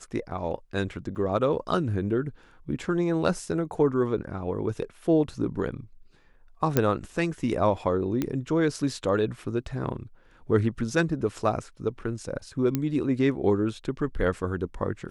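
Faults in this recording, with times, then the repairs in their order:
0:01.15–0:01.16: drop-out 7.5 ms
0:06.77: click −7 dBFS
0:08.22: click −14 dBFS
0:12.75: click −12 dBFS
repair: click removal
repair the gap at 0:01.15, 7.5 ms

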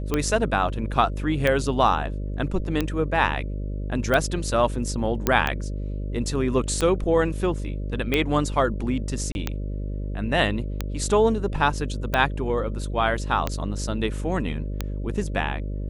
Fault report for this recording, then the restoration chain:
mains buzz 50 Hz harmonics 12 −29 dBFS
scratch tick 45 rpm −9 dBFS
0:05.27: click −6 dBFS
0:09.32–0:09.35: drop-out 31 ms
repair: click removal
hum removal 50 Hz, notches 12
repair the gap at 0:09.32, 31 ms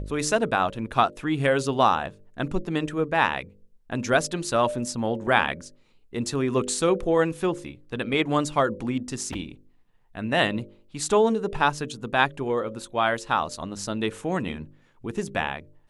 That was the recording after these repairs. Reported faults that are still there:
none of them is left

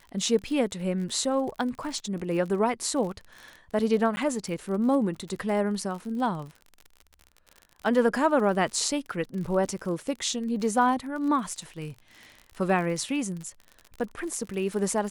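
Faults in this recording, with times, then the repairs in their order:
surface crackle 53 per second −35 dBFS
0:04.16–0:04.17: drop-out 10 ms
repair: click removal
repair the gap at 0:04.16, 10 ms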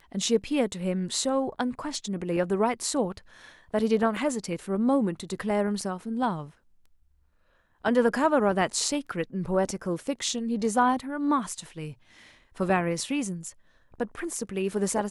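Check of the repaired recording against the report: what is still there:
none of them is left

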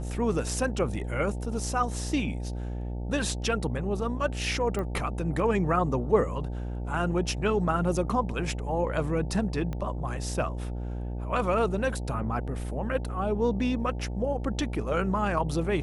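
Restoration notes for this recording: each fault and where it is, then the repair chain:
mains buzz 60 Hz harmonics 15 −33 dBFS
0:04.79: click −21 dBFS
0:09.73: click −22 dBFS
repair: click removal
hum removal 60 Hz, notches 15

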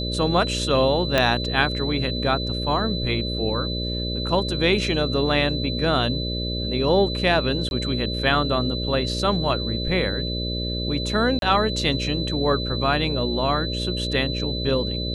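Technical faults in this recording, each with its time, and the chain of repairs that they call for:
mains buzz 60 Hz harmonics 10 −28 dBFS
whistle 4,000 Hz −29 dBFS
0:01.18: click −5 dBFS
0:07.69–0:07.71: drop-out 21 ms
0:11.39–0:11.42: drop-out 32 ms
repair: click removal
notch filter 4,000 Hz, Q 30
hum removal 60 Hz, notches 10
repair the gap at 0:07.69, 21 ms
repair the gap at 0:11.39, 32 ms

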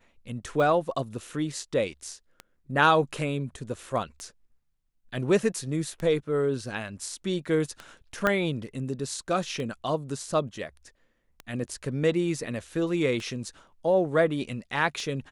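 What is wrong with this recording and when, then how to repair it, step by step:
scratch tick 33 1/3 rpm −22 dBFS
0:08.27: click −11 dBFS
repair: click removal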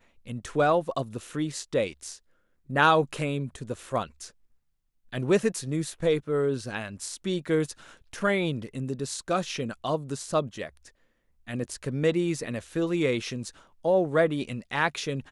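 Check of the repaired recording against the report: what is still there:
0:08.27: click

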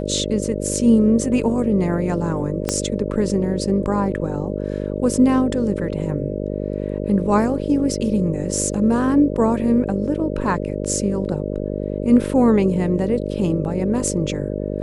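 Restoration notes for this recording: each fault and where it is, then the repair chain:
mains buzz 50 Hz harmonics 12 −25 dBFS
0:02.69: click −5 dBFS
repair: click removal
hum removal 50 Hz, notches 12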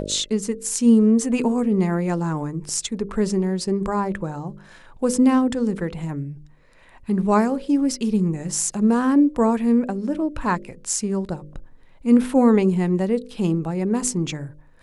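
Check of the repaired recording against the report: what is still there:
0:02.69: click

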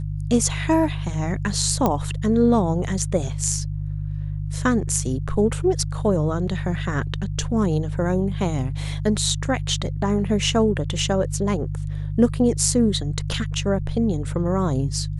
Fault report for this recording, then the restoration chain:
mains hum 50 Hz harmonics 3 −27 dBFS
0:01.86: click −7 dBFS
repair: click removal
hum removal 50 Hz, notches 3

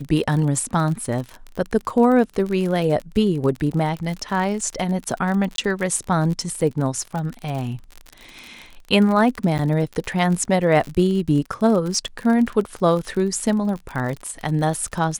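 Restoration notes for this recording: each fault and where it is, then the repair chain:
surface crackle 47 per second −26 dBFS
0:05.56–0:05.58: drop-out 22 ms
0:09.58–0:09.59: drop-out 9.1 ms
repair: click removal
repair the gap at 0:05.56, 22 ms
repair the gap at 0:09.58, 9.1 ms

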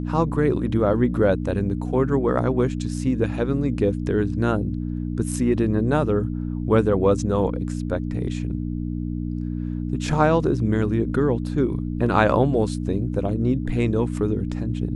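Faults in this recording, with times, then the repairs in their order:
mains hum 60 Hz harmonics 5 −27 dBFS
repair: hum removal 60 Hz, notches 5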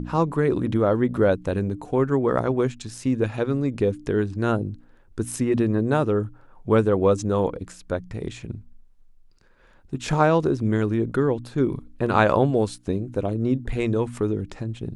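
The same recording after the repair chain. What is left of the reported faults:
none of them is left

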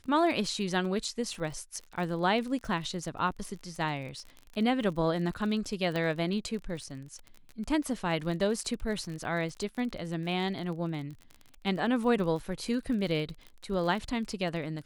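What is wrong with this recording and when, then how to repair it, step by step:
surface crackle 32 per second −37 dBFS
0:05.96: click −20 dBFS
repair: click removal

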